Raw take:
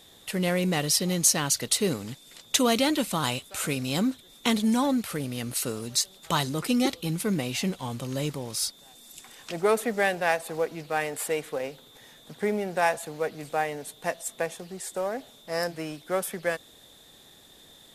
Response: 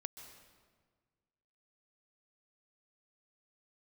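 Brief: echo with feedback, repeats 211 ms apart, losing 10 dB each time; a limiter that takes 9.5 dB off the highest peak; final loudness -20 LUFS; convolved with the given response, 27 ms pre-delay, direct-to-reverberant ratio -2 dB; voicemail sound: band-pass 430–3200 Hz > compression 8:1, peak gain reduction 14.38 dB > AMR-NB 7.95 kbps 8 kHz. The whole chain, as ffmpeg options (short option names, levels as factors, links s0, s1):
-filter_complex "[0:a]alimiter=limit=0.15:level=0:latency=1,aecho=1:1:211|422|633|844:0.316|0.101|0.0324|0.0104,asplit=2[s0][s1];[1:a]atrim=start_sample=2205,adelay=27[s2];[s1][s2]afir=irnorm=-1:irlink=0,volume=1.78[s3];[s0][s3]amix=inputs=2:normalize=0,highpass=430,lowpass=3200,acompressor=threshold=0.0224:ratio=8,volume=8.91" -ar 8000 -c:a libopencore_amrnb -b:a 7950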